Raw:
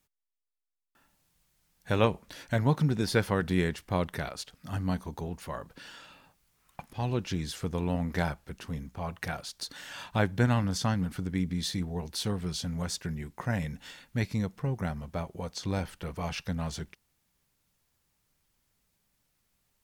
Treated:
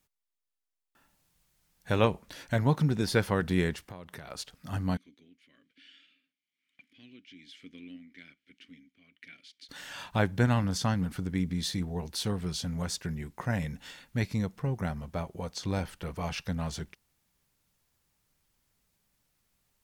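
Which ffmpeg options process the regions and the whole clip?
-filter_complex "[0:a]asettb=1/sr,asplit=3[s0][s1][s2];[s0]atrim=end=3.854[s3];[s1]atrim=start=3.85:end=4.3,asetpts=PTS-STARTPTS,afade=t=in:d=0.004:c=qsin,afade=t=out:st=0.446:d=0.004:c=qsin,highpass=72,acompressor=threshold=0.01:ratio=6:attack=3.2:release=140:knee=1:detection=peak[s4];[s2]atrim=start=4.296[s5];[s3][s4]acrossfade=d=0.004:c1=hsin:c2=qsin[s6];[s6][s5]acrossfade=d=0.004:c1=qsin:c2=hsin,asettb=1/sr,asplit=3[s7][s8][s9];[s7]atrim=end=4.974[s10];[s8]atrim=start=4.97:end=9.69,asetpts=PTS-STARTPTS,afade=t=in:d=0.004:c=qsin,afade=t=out:st=4.716:d=0.004:c=qsin,tiltshelf=f=780:g=-7.5,tremolo=f=1.1:d=0.59,asplit=3[s11][s12][s13];[s11]bandpass=f=270:t=q:w=8,volume=1[s14];[s12]bandpass=f=2290:t=q:w=8,volume=0.501[s15];[s13]bandpass=f=3010:t=q:w=8,volume=0.355[s16];[s14][s15][s16]amix=inputs=3:normalize=0[s17];[s9]atrim=start=9.686[s18];[s10][s17]acrossfade=d=0.004:c1=hsin:c2=qsin[s19];[s19][s18]acrossfade=d=0.004:c1=qsin:c2=hsin"

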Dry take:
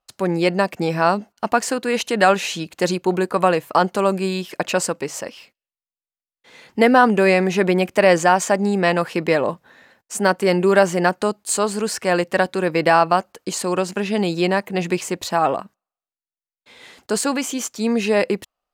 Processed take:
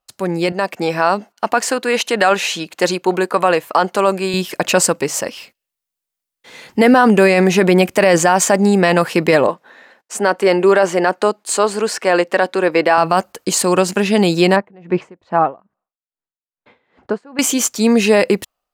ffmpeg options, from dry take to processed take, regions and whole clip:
-filter_complex "[0:a]asettb=1/sr,asplit=3[s0][s1][s2];[s0]atrim=end=0.524[s3];[s1]atrim=start=0.52:end=4.34,asetpts=PTS-STARTPTS,afade=t=in:d=0.004:c=qsin,afade=t=out:st=3.816:d=0.004:c=qsin,highpass=f=440:p=1,highshelf=f=5500:g=-7.5[s4];[s2]atrim=start=4.336[s5];[s3][s4]acrossfade=d=0.004:c1=hsin:c2=qsin[s6];[s6][s5]acrossfade=d=0.004:c1=qsin:c2=hsin,asettb=1/sr,asplit=3[s7][s8][s9];[s7]atrim=end=9.474[s10];[s8]atrim=start=9.47:end=12.98,asetpts=PTS-STARTPTS,afade=t=in:d=0.004:c=qsin,afade=t=out:st=3.506:d=0.004:c=qsin,highpass=310,aemphasis=mode=reproduction:type=50kf[s11];[s9]atrim=start=12.976[s12];[s10][s11]acrossfade=d=0.004:c1=hsin:c2=qsin[s13];[s13][s12]acrossfade=d=0.004:c1=qsin:c2=hsin,asettb=1/sr,asplit=3[s14][s15][s16];[s14]atrim=end=14.564[s17];[s15]atrim=start=14.56:end=17.39,asetpts=PTS-STARTPTS,afade=t=in:d=0.004:c=qsin,afade=t=out:st=2.826:d=0.004:c=qsin,lowpass=1500,aeval=exprs='val(0)*pow(10,-28*(0.5-0.5*cos(2*PI*2.4*n/s))/20)':c=same[s18];[s16]atrim=start=17.386[s19];[s17][s18]acrossfade=d=0.004:c1=hsin:c2=qsin[s20];[s20][s19]acrossfade=d=0.004:c1=qsin:c2=hsin,highshelf=f=7300:g=5.5,alimiter=limit=0.355:level=0:latency=1:release=20,dynaudnorm=f=410:g=3:m=2.99"

